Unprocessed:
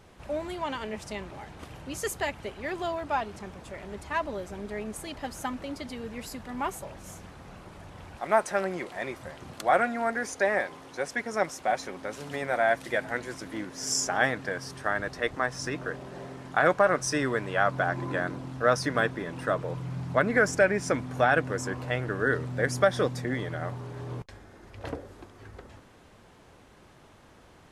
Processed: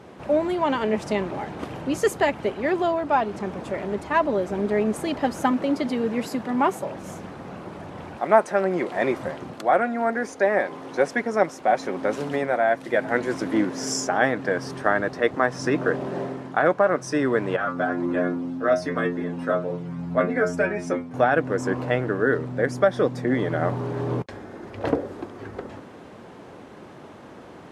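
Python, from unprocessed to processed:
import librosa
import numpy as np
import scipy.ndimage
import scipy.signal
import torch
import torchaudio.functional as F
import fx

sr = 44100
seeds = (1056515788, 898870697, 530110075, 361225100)

y = fx.highpass(x, sr, hz=110.0, slope=12, at=(5.51, 6.96))
y = fx.stiff_resonator(y, sr, f0_hz=86.0, decay_s=0.31, stiffness=0.002, at=(17.56, 21.14))
y = scipy.signal.sosfilt(scipy.signal.butter(2, 240.0, 'highpass', fs=sr, output='sos'), y)
y = fx.tilt_eq(y, sr, slope=-3.0)
y = fx.rider(y, sr, range_db=5, speed_s=0.5)
y = F.gain(torch.from_numpy(y), 6.0).numpy()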